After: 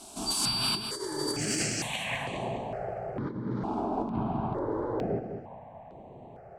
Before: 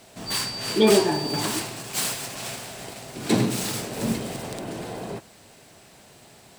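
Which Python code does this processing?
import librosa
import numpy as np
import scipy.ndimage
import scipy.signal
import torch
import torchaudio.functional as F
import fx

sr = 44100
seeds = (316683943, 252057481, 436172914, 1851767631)

p1 = fx.over_compress(x, sr, threshold_db=-30.0, ratio=-1.0)
p2 = fx.filter_sweep_lowpass(p1, sr, from_hz=9900.0, to_hz=850.0, start_s=1.62, end_s=2.43, q=1.9)
p3 = p2 + fx.echo_feedback(p2, sr, ms=205, feedback_pct=36, wet_db=-8.0, dry=0)
y = fx.phaser_held(p3, sr, hz=2.2, low_hz=510.0, high_hz=5100.0)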